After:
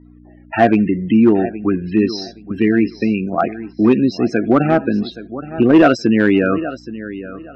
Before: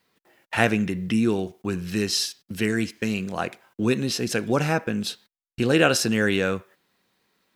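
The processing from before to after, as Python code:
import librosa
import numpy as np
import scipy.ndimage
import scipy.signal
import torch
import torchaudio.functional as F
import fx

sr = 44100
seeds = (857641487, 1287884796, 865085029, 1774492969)

p1 = fx.add_hum(x, sr, base_hz=60, snr_db=24)
p2 = fx.spec_topn(p1, sr, count=32)
p3 = fx.small_body(p2, sr, hz=(300.0, 670.0, 1200.0), ring_ms=20, db=14)
p4 = p3 + fx.echo_feedback(p3, sr, ms=822, feedback_pct=22, wet_db=-15, dry=0)
p5 = fx.dynamic_eq(p4, sr, hz=2300.0, q=5.8, threshold_db=-44.0, ratio=4.0, max_db=4)
p6 = 10.0 ** (-6.0 / 20.0) * (np.abs((p5 / 10.0 ** (-6.0 / 20.0) + 3.0) % 4.0 - 2.0) - 1.0)
p7 = p5 + F.gain(torch.from_numpy(p6), -5.0).numpy()
p8 = scipy.signal.sosfilt(scipy.signal.butter(2, 4800.0, 'lowpass', fs=sr, output='sos'), p7)
y = F.gain(torch.from_numpy(p8), -3.0).numpy()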